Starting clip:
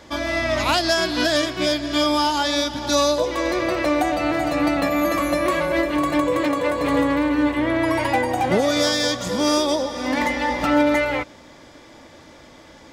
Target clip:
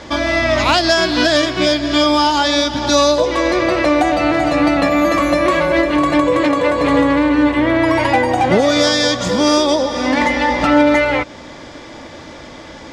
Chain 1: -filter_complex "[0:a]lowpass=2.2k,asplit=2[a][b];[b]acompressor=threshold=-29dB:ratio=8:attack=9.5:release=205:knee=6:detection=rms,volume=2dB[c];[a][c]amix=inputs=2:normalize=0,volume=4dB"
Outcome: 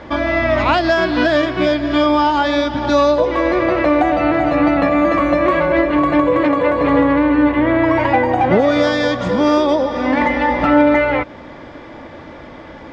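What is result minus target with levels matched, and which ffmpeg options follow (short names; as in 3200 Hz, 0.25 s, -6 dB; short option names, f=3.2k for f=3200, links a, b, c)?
8000 Hz band -16.0 dB
-filter_complex "[0:a]lowpass=6.9k,asplit=2[a][b];[b]acompressor=threshold=-29dB:ratio=8:attack=9.5:release=205:knee=6:detection=rms,volume=2dB[c];[a][c]amix=inputs=2:normalize=0,volume=4dB"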